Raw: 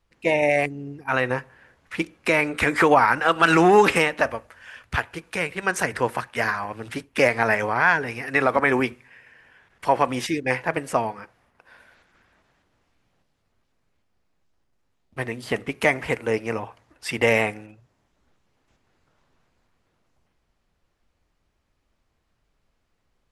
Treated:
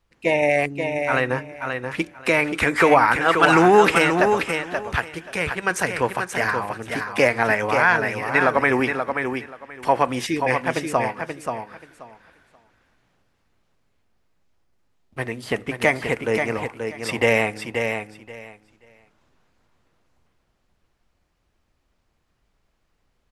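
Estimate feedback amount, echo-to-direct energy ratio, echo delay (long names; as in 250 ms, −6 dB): 18%, −6.0 dB, 531 ms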